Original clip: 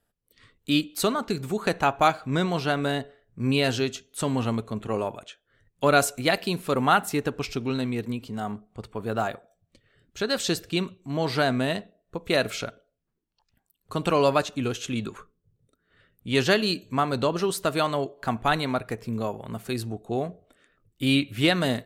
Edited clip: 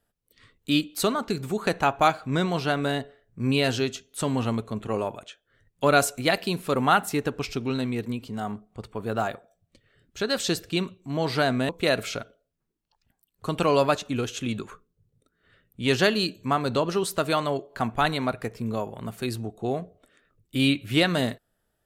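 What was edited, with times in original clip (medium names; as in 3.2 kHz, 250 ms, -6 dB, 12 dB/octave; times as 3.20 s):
11.69–12.16 s: delete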